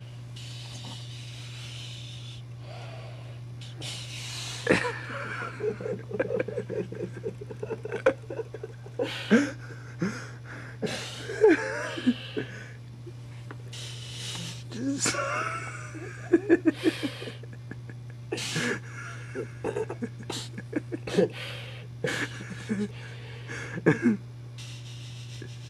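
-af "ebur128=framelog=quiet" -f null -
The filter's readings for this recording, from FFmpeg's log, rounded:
Integrated loudness:
  I:         -31.1 LUFS
  Threshold: -41.5 LUFS
Loudness range:
  LRA:         6.0 LU
  Threshold: -51.3 LUFS
  LRA low:   -34.5 LUFS
  LRA high:  -28.6 LUFS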